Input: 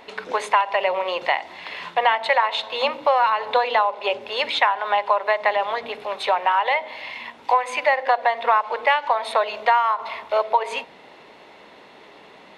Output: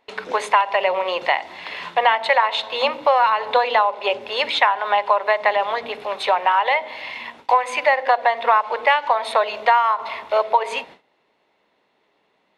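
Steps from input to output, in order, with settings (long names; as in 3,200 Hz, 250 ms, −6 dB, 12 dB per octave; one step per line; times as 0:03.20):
noise gate with hold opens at −32 dBFS
level +2 dB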